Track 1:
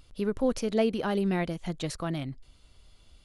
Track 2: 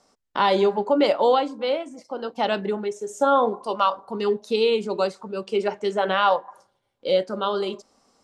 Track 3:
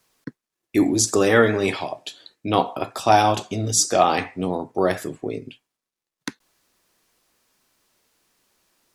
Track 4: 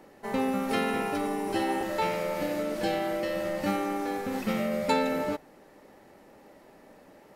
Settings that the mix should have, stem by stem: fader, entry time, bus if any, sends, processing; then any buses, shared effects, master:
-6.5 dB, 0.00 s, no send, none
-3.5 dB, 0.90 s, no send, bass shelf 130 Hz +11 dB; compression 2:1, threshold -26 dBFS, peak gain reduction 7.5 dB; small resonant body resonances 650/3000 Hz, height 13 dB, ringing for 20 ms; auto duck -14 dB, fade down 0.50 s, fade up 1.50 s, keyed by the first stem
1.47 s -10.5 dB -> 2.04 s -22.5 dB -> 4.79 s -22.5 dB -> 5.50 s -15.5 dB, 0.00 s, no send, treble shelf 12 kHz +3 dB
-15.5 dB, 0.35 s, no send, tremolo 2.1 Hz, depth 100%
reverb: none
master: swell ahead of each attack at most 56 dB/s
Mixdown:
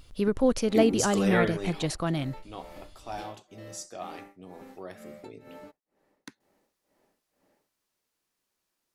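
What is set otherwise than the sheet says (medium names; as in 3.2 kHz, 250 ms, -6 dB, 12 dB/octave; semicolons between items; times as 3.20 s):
stem 1 -6.5 dB -> +3.5 dB; stem 2: muted; master: missing swell ahead of each attack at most 56 dB/s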